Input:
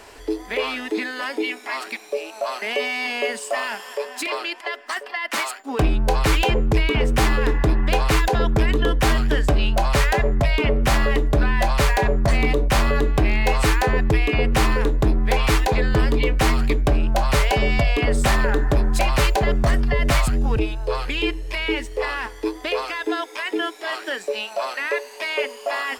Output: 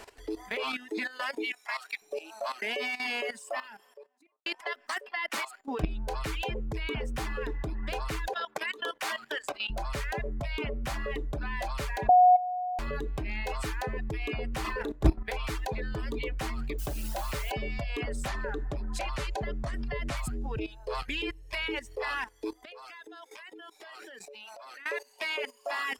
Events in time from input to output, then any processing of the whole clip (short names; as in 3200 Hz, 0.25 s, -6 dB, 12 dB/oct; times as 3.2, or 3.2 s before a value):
1.52–2.02 HPF 720 Hz
3.25–4.46 studio fade out
8.33–9.7 HPF 700 Hz
12.09–12.79 bleep 727 Hz -8 dBFS
14.61–15.32 doubler 34 ms -5 dB
16.78–17.52 modulation noise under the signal 14 dB
18.28–20.17 LPF 9700 Hz
22.65–24.86 compressor, threshold -33 dBFS
whole clip: reverb removal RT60 1.1 s; level quantiser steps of 15 dB; gain -2.5 dB